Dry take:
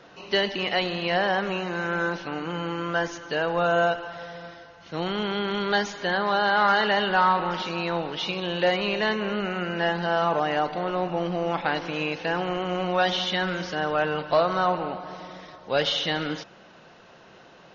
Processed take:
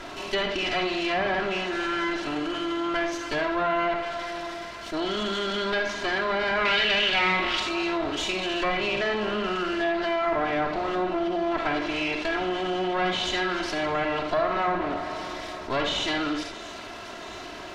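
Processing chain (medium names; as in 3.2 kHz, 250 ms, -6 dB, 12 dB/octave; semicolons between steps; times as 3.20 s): comb filter that takes the minimum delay 3 ms; low-pass that closes with the level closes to 2.8 kHz, closed at -20.5 dBFS; 6.65–7.60 s: resonant high shelf 1.9 kHz +11 dB, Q 1.5; feedback echo behind a high-pass 676 ms, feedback 78%, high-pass 5.6 kHz, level -20.5 dB; on a send at -6.5 dB: reverberation, pre-delay 38 ms; on the sum: level flattener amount 50%; trim -4.5 dB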